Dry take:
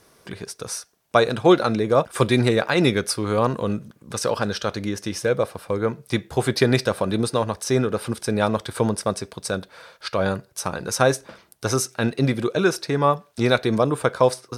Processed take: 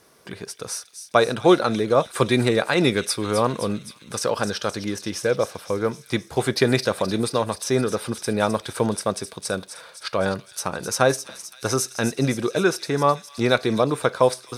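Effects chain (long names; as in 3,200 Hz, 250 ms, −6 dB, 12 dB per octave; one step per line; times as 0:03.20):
low-shelf EQ 88 Hz −8.5 dB
on a send: delay with a high-pass on its return 259 ms, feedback 65%, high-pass 3,700 Hz, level −8 dB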